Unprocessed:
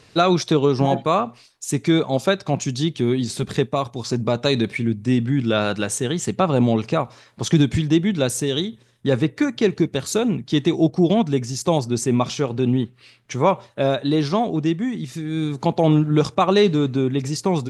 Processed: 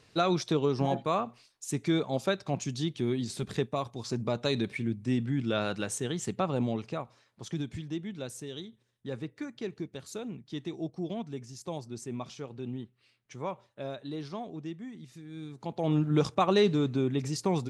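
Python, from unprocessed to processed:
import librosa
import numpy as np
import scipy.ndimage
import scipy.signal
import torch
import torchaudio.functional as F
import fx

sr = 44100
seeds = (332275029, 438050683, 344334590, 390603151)

y = fx.gain(x, sr, db=fx.line((6.28, -10.0), (7.46, -18.5), (15.63, -18.5), (16.05, -8.0)))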